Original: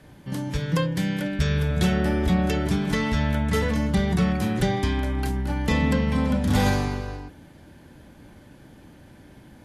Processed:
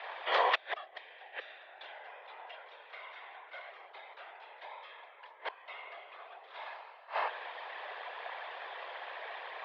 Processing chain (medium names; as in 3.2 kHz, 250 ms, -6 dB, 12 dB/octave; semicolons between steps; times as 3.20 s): inverted gate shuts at -19 dBFS, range -31 dB; whisper effect; mistuned SSB +140 Hz 550–3500 Hz; trim +13.5 dB